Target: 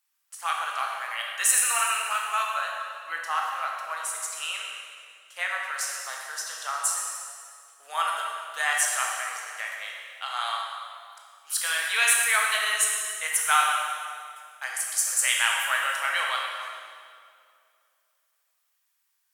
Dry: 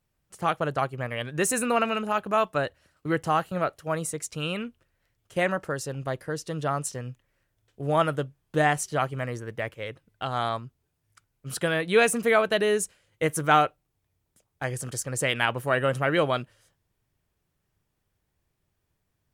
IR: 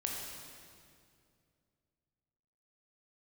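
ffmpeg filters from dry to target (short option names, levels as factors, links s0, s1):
-filter_complex "[0:a]highpass=f=1000:w=0.5412,highpass=f=1000:w=1.3066,asetnsamples=n=441:p=0,asendcmd='2.5 highshelf g 2;5.74 highshelf g 10',highshelf=f=4500:g=9[s0];[1:a]atrim=start_sample=2205[s1];[s0][s1]afir=irnorm=-1:irlink=0"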